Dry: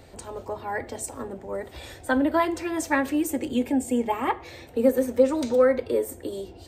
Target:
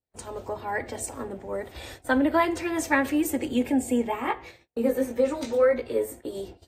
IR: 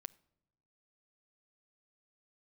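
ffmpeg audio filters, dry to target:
-filter_complex "[0:a]adynamicequalizer=threshold=0.00708:dfrequency=2200:dqfactor=2.3:tfrequency=2200:tqfactor=2.3:attack=5:release=100:ratio=0.375:range=2:mode=boostabove:tftype=bell,asplit=3[a][b][c];[a]afade=t=out:st=4.07:d=0.02[d];[b]flanger=delay=16.5:depth=2.1:speed=1.9,afade=t=in:st=4.07:d=0.02,afade=t=out:st=6.34:d=0.02[e];[c]afade=t=in:st=6.34:d=0.02[f];[d][e][f]amix=inputs=3:normalize=0,agate=range=-43dB:threshold=-42dB:ratio=16:detection=peak" -ar 44100 -c:a aac -b:a 48k

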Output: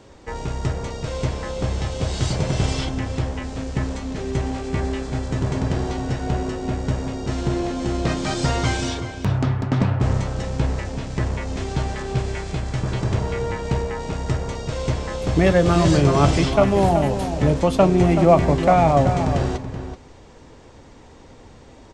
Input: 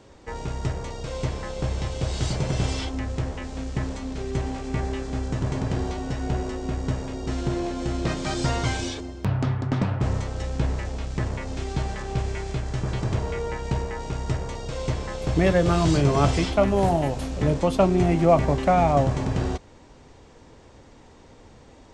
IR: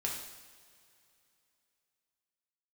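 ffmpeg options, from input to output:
-filter_complex "[0:a]asplit=2[a][b];[b]adelay=379,volume=-9dB,highshelf=f=4k:g=-8.53[c];[a][c]amix=inputs=2:normalize=0,volume=3.5dB"

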